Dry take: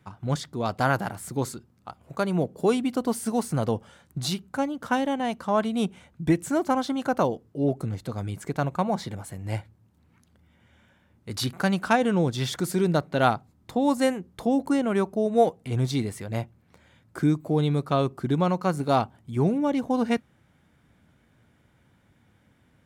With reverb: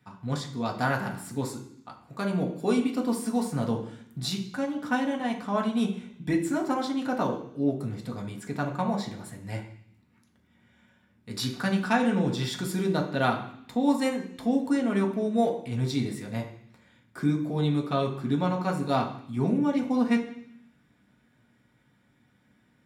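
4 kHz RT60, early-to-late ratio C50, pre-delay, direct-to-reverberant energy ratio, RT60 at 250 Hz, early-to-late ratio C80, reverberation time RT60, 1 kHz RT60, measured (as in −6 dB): 0.85 s, 8.5 dB, 3 ms, −0.5 dB, 0.95 s, 11.5 dB, 0.65 s, 0.65 s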